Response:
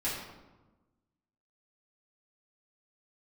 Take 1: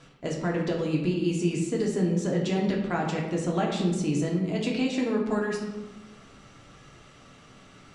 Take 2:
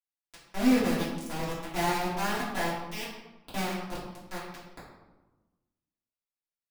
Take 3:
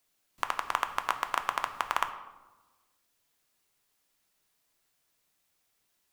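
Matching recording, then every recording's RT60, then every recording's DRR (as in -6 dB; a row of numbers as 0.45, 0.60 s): 2; 1.2, 1.2, 1.2 s; -2.0, -11.0, 7.0 dB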